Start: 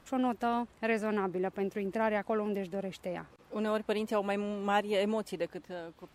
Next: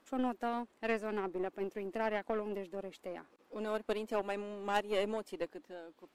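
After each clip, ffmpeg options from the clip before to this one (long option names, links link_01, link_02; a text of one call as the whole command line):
ffmpeg -i in.wav -af "lowshelf=frequency=180:width_type=q:width=1.5:gain=-14,aeval=exprs='0.211*(cos(1*acos(clip(val(0)/0.211,-1,1)))-cos(1*PI/2))+0.0335*(cos(3*acos(clip(val(0)/0.211,-1,1)))-cos(3*PI/2))+0.0168*(cos(4*acos(clip(val(0)/0.211,-1,1)))-cos(4*PI/2))+0.0188*(cos(5*acos(clip(val(0)/0.211,-1,1)))-cos(5*PI/2))+0.015*(cos(7*acos(clip(val(0)/0.211,-1,1)))-cos(7*PI/2))':channel_layout=same,volume=-1.5dB" out.wav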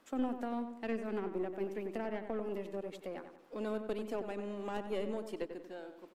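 ffmpeg -i in.wav -filter_complex "[0:a]acrossover=split=400[link_01][link_02];[link_02]acompressor=threshold=-43dB:ratio=6[link_03];[link_01][link_03]amix=inputs=2:normalize=0,asplit=2[link_04][link_05];[link_05]adelay=93,lowpass=frequency=2500:poles=1,volume=-8dB,asplit=2[link_06][link_07];[link_07]adelay=93,lowpass=frequency=2500:poles=1,volume=0.45,asplit=2[link_08][link_09];[link_09]adelay=93,lowpass=frequency=2500:poles=1,volume=0.45,asplit=2[link_10][link_11];[link_11]adelay=93,lowpass=frequency=2500:poles=1,volume=0.45,asplit=2[link_12][link_13];[link_13]adelay=93,lowpass=frequency=2500:poles=1,volume=0.45[link_14];[link_04][link_06][link_08][link_10][link_12][link_14]amix=inputs=6:normalize=0,volume=1.5dB" out.wav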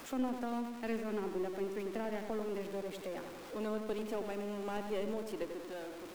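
ffmpeg -i in.wav -af "aeval=exprs='val(0)+0.5*0.00708*sgn(val(0))':channel_layout=same,volume=-1.5dB" out.wav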